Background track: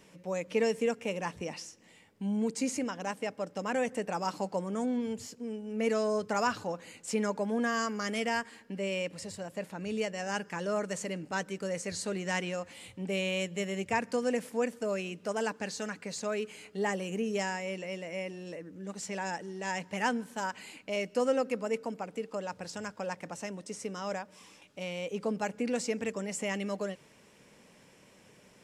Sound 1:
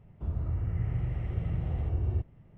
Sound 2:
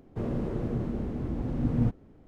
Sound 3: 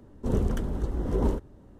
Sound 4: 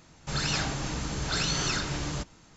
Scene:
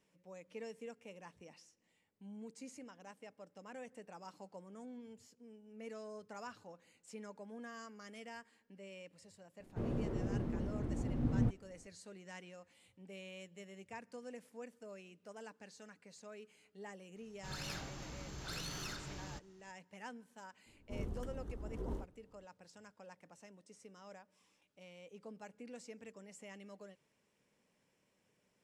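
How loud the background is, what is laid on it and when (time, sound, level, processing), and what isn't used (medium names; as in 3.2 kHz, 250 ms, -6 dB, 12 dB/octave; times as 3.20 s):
background track -19 dB
9.60 s: add 2 -7 dB
17.16 s: add 4 -15.5 dB + tracing distortion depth 0.031 ms
20.66 s: add 3 -16.5 dB
not used: 1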